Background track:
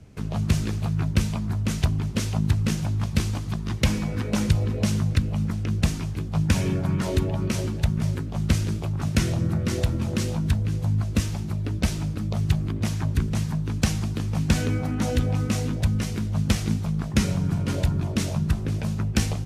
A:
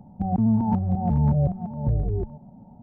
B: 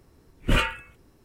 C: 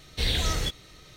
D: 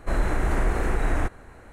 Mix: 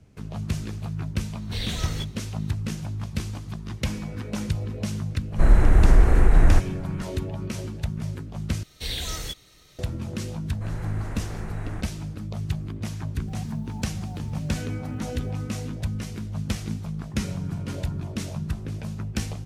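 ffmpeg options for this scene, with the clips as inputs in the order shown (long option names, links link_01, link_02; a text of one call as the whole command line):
ffmpeg -i bed.wav -i cue0.wav -i cue1.wav -i cue2.wav -i cue3.wav -filter_complex "[3:a]asplit=2[link_01][link_02];[4:a]asplit=2[link_03][link_04];[0:a]volume=-6dB[link_05];[link_03]lowshelf=frequency=240:gain=10.5[link_06];[link_02]highshelf=frequency=6000:gain=9.5[link_07];[1:a]acrusher=bits=7:mix=0:aa=0.5[link_08];[link_05]asplit=2[link_09][link_10];[link_09]atrim=end=8.634[link_11];[link_07]atrim=end=1.16,asetpts=PTS-STARTPTS,volume=-6dB[link_12];[link_10]atrim=start=9.786[link_13];[link_01]atrim=end=1.16,asetpts=PTS-STARTPTS,volume=-5dB,afade=type=in:duration=0.004:curve=hsin,afade=type=out:start_time=1.156:duration=0.004:curve=hsin,adelay=1340[link_14];[link_06]atrim=end=1.72,asetpts=PTS-STARTPTS,volume=-1dB,afade=type=in:duration=0.004:curve=hsin,afade=type=out:start_time=1.716:duration=0.004:curve=hsin,adelay=5320[link_15];[link_04]atrim=end=1.72,asetpts=PTS-STARTPTS,volume=-12dB,afade=type=in:duration=0.004:curve=hsin,afade=type=out:start_time=1.716:duration=0.004:curve=hsin,adelay=10540[link_16];[link_08]atrim=end=2.82,asetpts=PTS-STARTPTS,volume=-16dB,afade=type=in:duration=0.004:curve=hsin,afade=type=out:start_time=2.816:duration=0.004:curve=hsin,adelay=13070[link_17];[link_11][link_12]acrossfade=duration=0.004:curve1=hsin:curve2=hsin[link_18];[link_18][link_13]acrossfade=duration=0.004:curve1=hsin:curve2=hsin[link_19];[link_19][link_14][link_15][link_16][link_17]amix=inputs=5:normalize=0" out.wav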